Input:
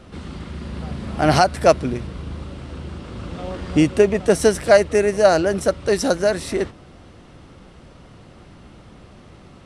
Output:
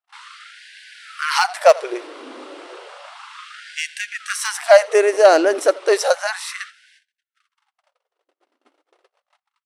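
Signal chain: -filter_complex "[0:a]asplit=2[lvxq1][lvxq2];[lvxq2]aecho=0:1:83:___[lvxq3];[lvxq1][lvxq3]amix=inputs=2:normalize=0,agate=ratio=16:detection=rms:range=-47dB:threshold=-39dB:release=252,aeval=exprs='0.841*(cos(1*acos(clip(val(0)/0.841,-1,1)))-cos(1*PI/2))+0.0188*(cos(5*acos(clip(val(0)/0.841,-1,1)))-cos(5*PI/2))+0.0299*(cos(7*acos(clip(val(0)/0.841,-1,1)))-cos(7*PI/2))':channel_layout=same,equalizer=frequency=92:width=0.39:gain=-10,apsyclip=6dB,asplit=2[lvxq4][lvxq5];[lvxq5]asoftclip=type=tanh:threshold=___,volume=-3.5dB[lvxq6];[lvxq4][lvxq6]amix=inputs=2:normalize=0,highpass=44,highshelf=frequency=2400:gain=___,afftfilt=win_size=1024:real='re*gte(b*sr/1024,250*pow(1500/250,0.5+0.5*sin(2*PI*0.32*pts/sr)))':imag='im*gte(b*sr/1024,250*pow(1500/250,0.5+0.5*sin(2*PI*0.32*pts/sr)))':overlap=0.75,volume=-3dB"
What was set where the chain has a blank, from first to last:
0.0668, -12.5dB, -4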